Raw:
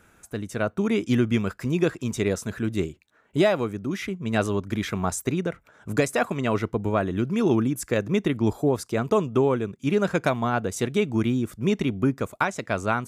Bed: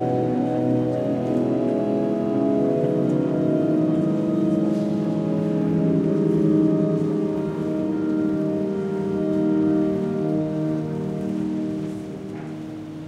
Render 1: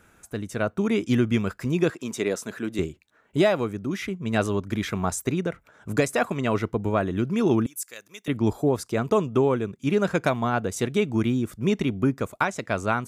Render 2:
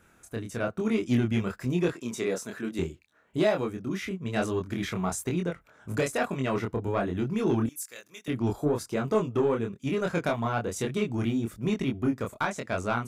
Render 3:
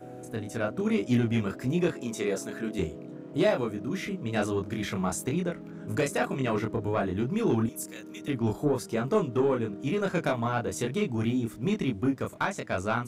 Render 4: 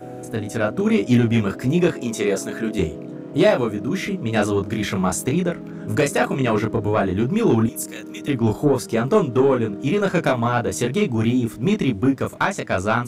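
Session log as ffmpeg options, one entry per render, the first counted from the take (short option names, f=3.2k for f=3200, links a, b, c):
-filter_complex "[0:a]asettb=1/sr,asplit=3[a][b][c];[a]atrim=end=1.904[d];[b]atrim=start=1.9:end=2.79,asetpts=PTS-STARTPTS,afade=t=in:d=0.004:c=qsin,afade=t=out:st=0.886:d=0.004:c=qsin,highpass=240[e];[c]atrim=start=2.786[f];[d][e]acrossfade=d=0.004:c1=hsin:c2=qsin[g];[g][f]acrossfade=d=0.004:c1=qsin:c2=hsin,asettb=1/sr,asplit=3[h][i][j];[h]atrim=end=7.664[k];[i]atrim=start=7.66:end=8.28,asetpts=PTS-STARTPTS,afade=t=in:d=0.004:c=qsin,afade=t=out:st=0.616:d=0.004:c=qsin,aderivative[l];[j]atrim=start=8.276[m];[k][l]acrossfade=d=0.004:c1=hsin:c2=qsin[n];[n][m]acrossfade=d=0.004:c1=qsin:c2=hsin"
-af "asoftclip=type=tanh:threshold=-13.5dB,flanger=delay=22.5:depth=4.3:speed=1.1"
-filter_complex "[1:a]volume=-21.5dB[a];[0:a][a]amix=inputs=2:normalize=0"
-af "volume=8.5dB"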